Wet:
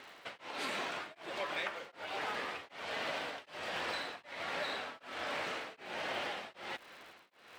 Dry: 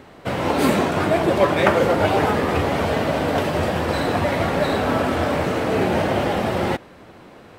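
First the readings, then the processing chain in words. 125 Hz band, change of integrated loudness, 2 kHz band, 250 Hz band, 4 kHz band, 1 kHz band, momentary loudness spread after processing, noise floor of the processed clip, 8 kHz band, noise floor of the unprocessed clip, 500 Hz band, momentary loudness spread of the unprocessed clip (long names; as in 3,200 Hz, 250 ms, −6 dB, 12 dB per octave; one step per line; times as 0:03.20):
−35.5 dB, −19.5 dB, −13.5 dB, −29.5 dB, −11.0 dB, −19.0 dB, 7 LU, −63 dBFS, −16.0 dB, −45 dBFS, −24.0 dB, 5 LU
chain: low-pass filter 3,300 Hz 12 dB per octave
first difference
downward compressor 10 to 1, threshold −44 dBFS, peak gain reduction 16.5 dB
surface crackle 290 per second −59 dBFS
tremolo along a rectified sine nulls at 1.3 Hz
level +10 dB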